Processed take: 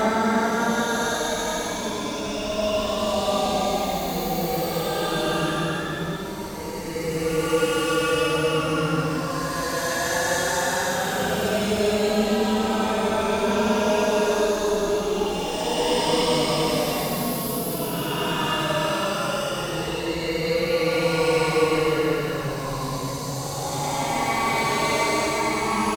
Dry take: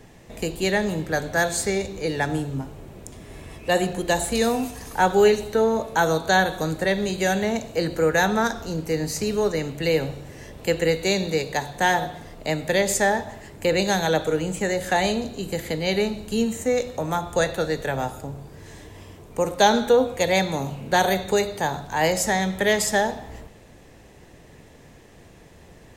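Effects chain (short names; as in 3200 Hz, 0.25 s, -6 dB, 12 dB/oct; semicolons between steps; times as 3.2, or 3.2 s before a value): echoes that change speed 0.749 s, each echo +4 st, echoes 3; echo 0.946 s -4.5 dB; Paulstretch 14×, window 0.10 s, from 8.4; gain -3.5 dB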